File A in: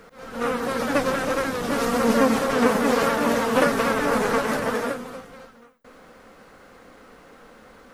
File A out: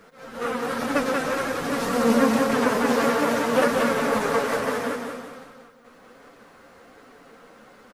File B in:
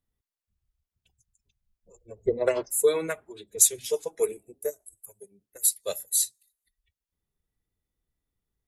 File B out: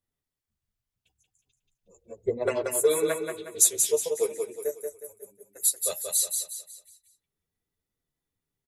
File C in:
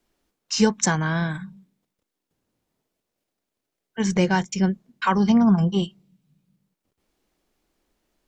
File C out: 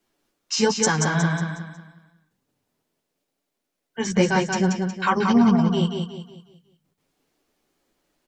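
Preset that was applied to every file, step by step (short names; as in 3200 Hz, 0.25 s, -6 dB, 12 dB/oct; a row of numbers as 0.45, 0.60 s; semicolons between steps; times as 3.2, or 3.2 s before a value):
low shelf 71 Hz -10 dB; chorus voices 2, 1.2 Hz, delay 10 ms, depth 3.2 ms; on a send: feedback echo 0.182 s, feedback 38%, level -5 dB; on the sum: normalise peaks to -6 dBFS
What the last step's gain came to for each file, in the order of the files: +1.0, +2.5, +4.0 dB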